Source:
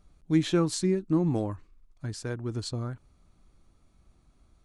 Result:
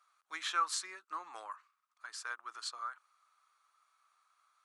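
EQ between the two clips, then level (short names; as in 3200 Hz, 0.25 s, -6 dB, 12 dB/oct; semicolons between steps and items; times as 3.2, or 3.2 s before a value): ladder high-pass 1100 Hz, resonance 65%; +7.5 dB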